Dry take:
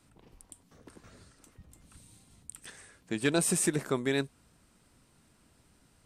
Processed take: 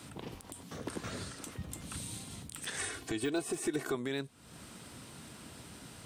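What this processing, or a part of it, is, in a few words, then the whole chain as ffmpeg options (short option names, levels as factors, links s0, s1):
broadcast voice chain: -filter_complex "[0:a]highpass=86,deesser=0.95,acompressor=threshold=0.00398:ratio=4,equalizer=f=3400:t=o:w=0.54:g=3.5,alimiter=level_in=6.68:limit=0.0631:level=0:latency=1:release=69,volume=0.15,asettb=1/sr,asplit=3[s0][s1][s2];[s0]atrim=end=2.794[s3];[s1]atrim=start=2.79:end=3.95,asetpts=PTS-STARTPTS,afade=t=in:d=0.004:c=qsin,afade=t=out:st=1.156:d=0.004:c=qsin,aecho=1:1:2.7:0.85,atrim=end_sample=51156[s4];[s2]atrim=start=3.946[s5];[s3][s4]acrossfade=d=0.004:c1=hsin:c2=qsin[s6];[s6][s5]acrossfade=d=0.004:c1=qsin:c2=hsin,volume=5.62"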